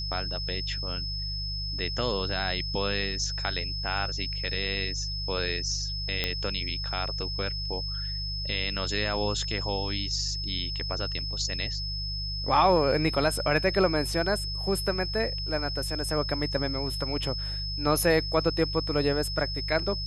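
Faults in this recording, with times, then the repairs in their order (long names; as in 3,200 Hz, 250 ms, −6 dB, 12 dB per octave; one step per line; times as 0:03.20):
mains hum 50 Hz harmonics 3 −35 dBFS
whistle 5,200 Hz −33 dBFS
0:06.24: click −12 dBFS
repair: click removal
hum removal 50 Hz, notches 3
notch filter 5,200 Hz, Q 30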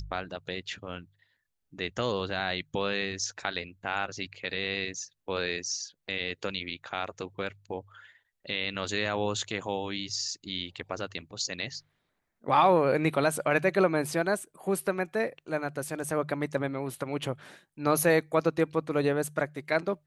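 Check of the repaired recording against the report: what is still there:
none of them is left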